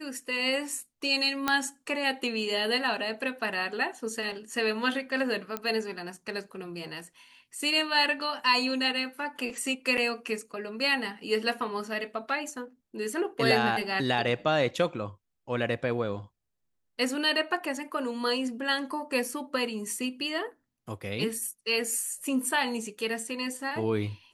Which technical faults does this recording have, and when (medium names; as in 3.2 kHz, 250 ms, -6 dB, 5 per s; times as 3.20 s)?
1.48 s: pop -10 dBFS
5.57 s: pop -16 dBFS
9.97–9.98 s: dropout 7.7 ms